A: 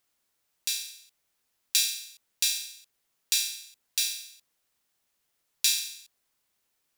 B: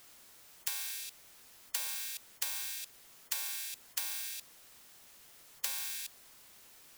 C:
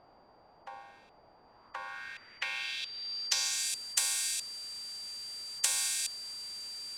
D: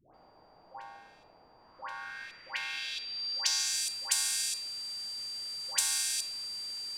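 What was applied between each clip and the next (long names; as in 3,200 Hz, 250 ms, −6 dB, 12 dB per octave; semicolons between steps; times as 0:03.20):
every bin compressed towards the loudest bin 10 to 1; level −4.5 dB
steady tone 4,700 Hz −48 dBFS; low-pass filter sweep 800 Hz → 8,500 Hz, 0:01.41–0:03.72; level +5.5 dB
all-pass dispersion highs, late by 144 ms, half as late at 800 Hz; on a send at −9 dB: convolution reverb RT60 1.2 s, pre-delay 6 ms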